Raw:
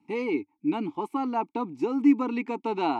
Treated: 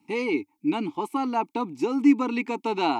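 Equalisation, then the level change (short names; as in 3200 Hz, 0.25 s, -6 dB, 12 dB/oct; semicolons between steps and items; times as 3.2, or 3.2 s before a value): high shelf 3100 Hz +11 dB; +1.5 dB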